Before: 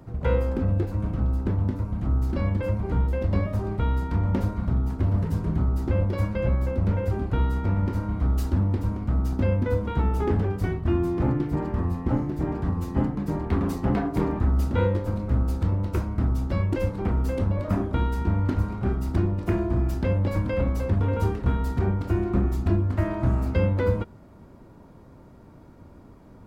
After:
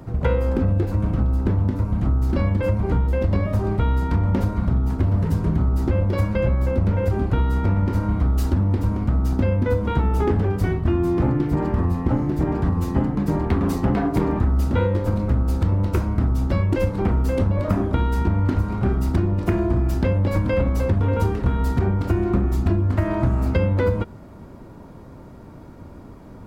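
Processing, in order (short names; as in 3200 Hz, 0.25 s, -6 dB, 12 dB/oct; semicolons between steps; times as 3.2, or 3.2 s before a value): compressor, threshold -23 dBFS, peak gain reduction 7 dB; gain +7.5 dB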